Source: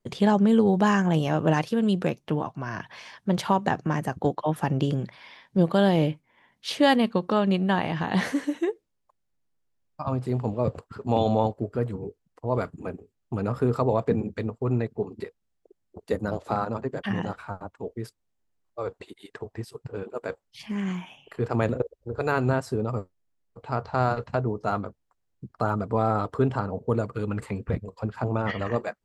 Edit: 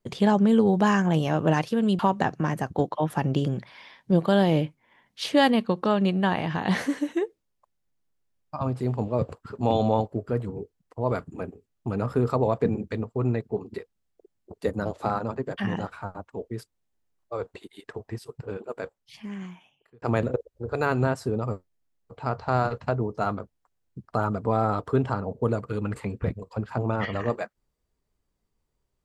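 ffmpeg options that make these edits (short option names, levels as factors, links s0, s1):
-filter_complex "[0:a]asplit=3[s0][s1][s2];[s0]atrim=end=1.992[s3];[s1]atrim=start=3.448:end=21.48,asetpts=PTS-STARTPTS,afade=t=out:st=16.522:d=1.51[s4];[s2]atrim=start=21.48,asetpts=PTS-STARTPTS,afade=t=in:d=0.004:c=hsin[s5];[s4][s5]concat=n=2:v=0:a=1[s6];[s3][s6]acrossfade=d=0.004:c1=hsin:c2=hsin"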